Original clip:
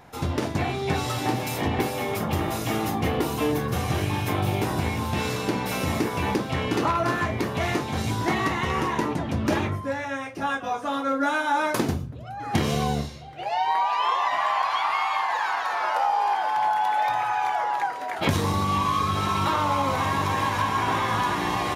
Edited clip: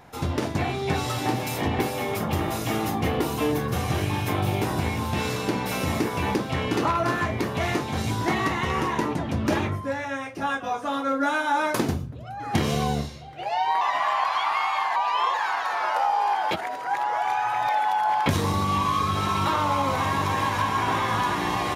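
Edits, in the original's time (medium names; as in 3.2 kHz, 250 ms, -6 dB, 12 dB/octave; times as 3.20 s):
13.81–14.19 s: move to 15.34 s
16.51–18.26 s: reverse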